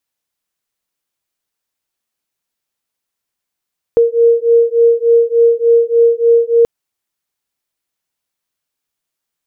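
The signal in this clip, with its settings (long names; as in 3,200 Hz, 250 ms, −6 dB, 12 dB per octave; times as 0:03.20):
two tones that beat 464 Hz, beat 3.4 Hz, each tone −10.5 dBFS 2.68 s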